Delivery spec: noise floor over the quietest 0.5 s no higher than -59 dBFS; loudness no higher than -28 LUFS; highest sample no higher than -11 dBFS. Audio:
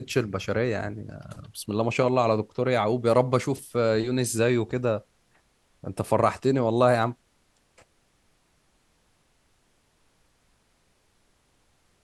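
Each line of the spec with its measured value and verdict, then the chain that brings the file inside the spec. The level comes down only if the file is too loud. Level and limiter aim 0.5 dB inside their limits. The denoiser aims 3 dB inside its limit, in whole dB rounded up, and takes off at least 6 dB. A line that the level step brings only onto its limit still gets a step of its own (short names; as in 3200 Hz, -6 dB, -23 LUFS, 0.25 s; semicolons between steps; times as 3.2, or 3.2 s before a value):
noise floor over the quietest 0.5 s -67 dBFS: OK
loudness -25.0 LUFS: fail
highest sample -6.5 dBFS: fail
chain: gain -3.5 dB; limiter -11.5 dBFS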